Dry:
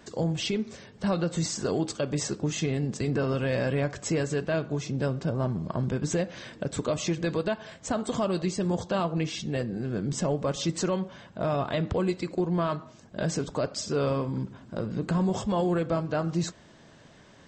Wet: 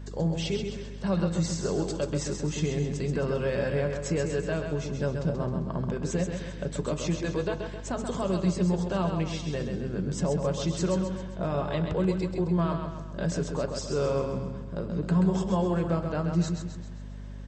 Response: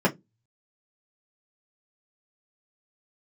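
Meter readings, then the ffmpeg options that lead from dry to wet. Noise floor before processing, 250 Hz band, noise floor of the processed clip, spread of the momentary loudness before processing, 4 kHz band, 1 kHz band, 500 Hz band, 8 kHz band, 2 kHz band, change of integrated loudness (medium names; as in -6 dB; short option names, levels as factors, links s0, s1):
-54 dBFS, +0.5 dB, -39 dBFS, 6 LU, -3.0 dB, -2.0 dB, -0.5 dB, -3.0 dB, -2.0 dB, 0.0 dB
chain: -filter_complex "[0:a]aecho=1:1:132|264|396|528|660|792:0.501|0.246|0.12|0.059|0.0289|0.0142,asplit=2[s0][s1];[1:a]atrim=start_sample=2205[s2];[s1][s2]afir=irnorm=-1:irlink=0,volume=0.0631[s3];[s0][s3]amix=inputs=2:normalize=0,aeval=exprs='val(0)+0.02*(sin(2*PI*50*n/s)+sin(2*PI*2*50*n/s)/2+sin(2*PI*3*50*n/s)/3+sin(2*PI*4*50*n/s)/4+sin(2*PI*5*50*n/s)/5)':c=same,volume=0.596"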